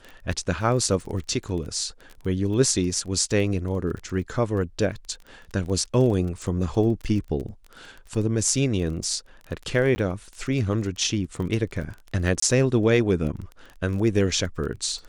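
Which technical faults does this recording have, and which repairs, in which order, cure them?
crackle 21 per s -32 dBFS
9.95–9.96 s: dropout 10 ms
12.40–12.42 s: dropout 24 ms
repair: de-click; interpolate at 9.95 s, 10 ms; interpolate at 12.40 s, 24 ms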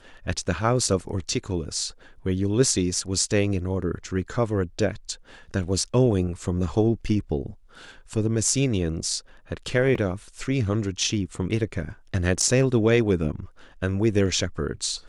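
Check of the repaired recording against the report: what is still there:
nothing left

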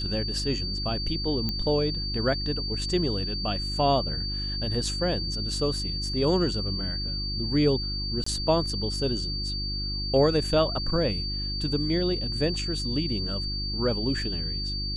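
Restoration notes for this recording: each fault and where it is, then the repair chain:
hum 50 Hz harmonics 7 -33 dBFS
whine 4.6 kHz -31 dBFS
1.49 s: pop -15 dBFS
8.24–8.26 s: dropout 24 ms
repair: de-click; de-hum 50 Hz, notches 7; band-stop 4.6 kHz, Q 30; interpolate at 8.24 s, 24 ms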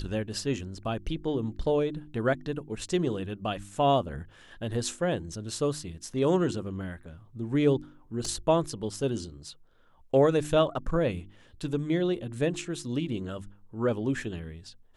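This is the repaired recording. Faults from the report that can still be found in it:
nothing left

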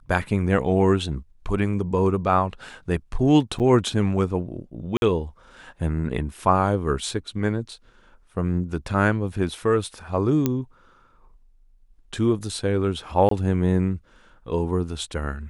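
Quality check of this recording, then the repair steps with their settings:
3.59–3.60 s: dropout 8.4 ms
4.97–5.02 s: dropout 51 ms
10.46 s: pop -8 dBFS
13.29–13.31 s: dropout 23 ms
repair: de-click; interpolate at 3.59 s, 8.4 ms; interpolate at 4.97 s, 51 ms; interpolate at 13.29 s, 23 ms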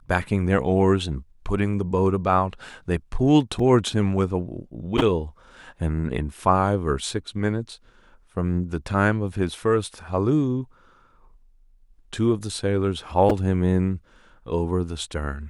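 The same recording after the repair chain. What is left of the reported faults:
nothing left

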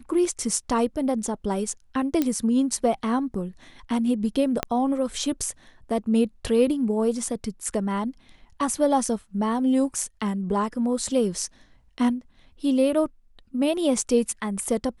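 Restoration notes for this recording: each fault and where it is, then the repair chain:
2.22 s: pop -10 dBFS
4.63 s: pop -8 dBFS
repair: de-click

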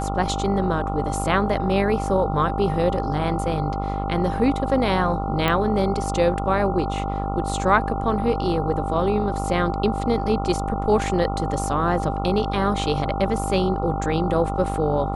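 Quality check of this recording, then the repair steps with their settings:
buzz 50 Hz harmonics 28 -27 dBFS
whine 790 Hz -28 dBFS
5.48 s: pop -9 dBFS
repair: de-click; band-stop 790 Hz, Q 30; de-hum 50 Hz, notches 28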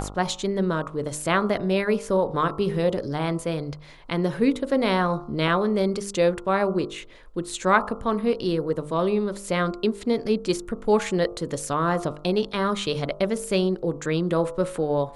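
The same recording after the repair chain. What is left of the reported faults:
nothing left

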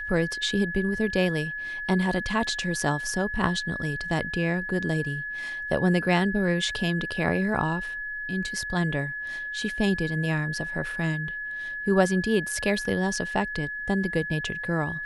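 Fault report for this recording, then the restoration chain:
whine 1.7 kHz -31 dBFS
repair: band-stop 1.7 kHz, Q 30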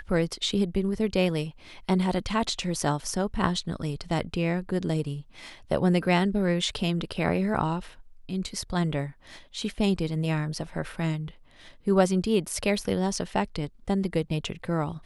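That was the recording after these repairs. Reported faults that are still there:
nothing left

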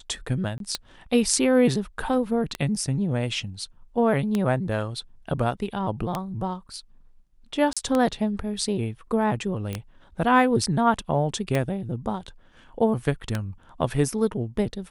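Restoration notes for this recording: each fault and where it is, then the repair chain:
tick 33 1/3 rpm -11 dBFS
0.58–0.60 s: dropout 22 ms
7.73–7.77 s: dropout 36 ms
9.73 s: pop -18 dBFS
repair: de-click; interpolate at 0.58 s, 22 ms; interpolate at 7.73 s, 36 ms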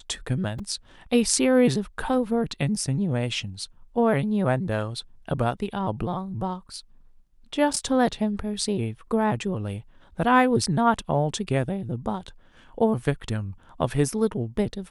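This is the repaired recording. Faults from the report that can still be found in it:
nothing left

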